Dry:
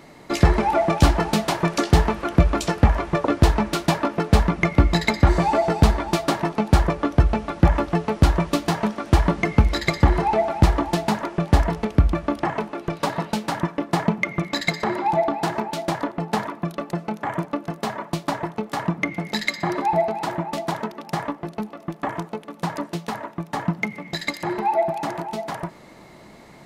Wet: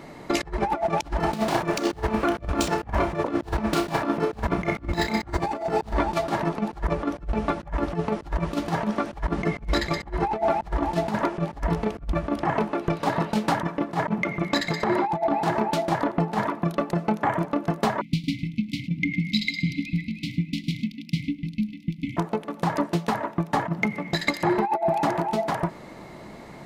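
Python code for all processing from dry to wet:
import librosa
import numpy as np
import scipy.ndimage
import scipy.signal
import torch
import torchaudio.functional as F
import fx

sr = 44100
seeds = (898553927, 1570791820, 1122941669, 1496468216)

y = fx.chain(x, sr, fx.median_filter(points=3),
    fx.high_shelf(hz=9400.0, db=6.5),
    fx.room_flutter(wall_m=5.5, rt60_s=0.25), at=(1.2, 5.93))
y = fx.chain(y, sr, fx.brickwall_bandstop(low_hz=310.0, high_hz=2000.0),
    fx.high_shelf_res(hz=5600.0, db=-6.5, q=1.5),
    fx.echo_single(ms=104, db=-16.5), at=(18.01, 22.17))
y = fx.high_shelf(y, sr, hz=2500.0, db=-5.5)
y = fx.over_compress(y, sr, threshold_db=-24.0, ratio=-0.5)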